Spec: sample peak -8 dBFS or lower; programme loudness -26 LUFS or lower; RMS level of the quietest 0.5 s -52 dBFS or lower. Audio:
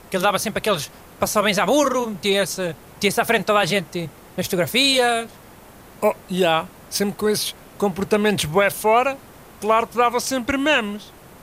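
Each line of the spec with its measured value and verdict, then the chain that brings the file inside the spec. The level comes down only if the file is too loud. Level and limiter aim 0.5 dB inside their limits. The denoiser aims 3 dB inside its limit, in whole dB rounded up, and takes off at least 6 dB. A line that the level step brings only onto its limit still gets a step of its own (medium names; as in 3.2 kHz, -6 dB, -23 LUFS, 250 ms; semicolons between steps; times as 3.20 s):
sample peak -5.5 dBFS: fail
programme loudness -20.5 LUFS: fail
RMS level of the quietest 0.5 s -44 dBFS: fail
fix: noise reduction 6 dB, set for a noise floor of -44 dBFS; trim -6 dB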